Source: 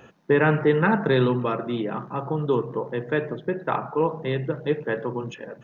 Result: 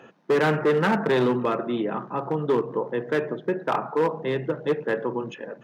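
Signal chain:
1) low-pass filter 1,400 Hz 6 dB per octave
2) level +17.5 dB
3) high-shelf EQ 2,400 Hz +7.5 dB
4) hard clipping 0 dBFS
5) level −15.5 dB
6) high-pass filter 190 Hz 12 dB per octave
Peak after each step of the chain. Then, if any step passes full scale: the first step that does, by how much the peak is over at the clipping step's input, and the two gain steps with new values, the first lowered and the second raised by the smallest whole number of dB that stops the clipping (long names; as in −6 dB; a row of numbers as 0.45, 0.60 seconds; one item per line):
−9.0, +8.5, +9.0, 0.0, −15.5, −10.5 dBFS
step 2, 9.0 dB
step 2 +8.5 dB, step 5 −6.5 dB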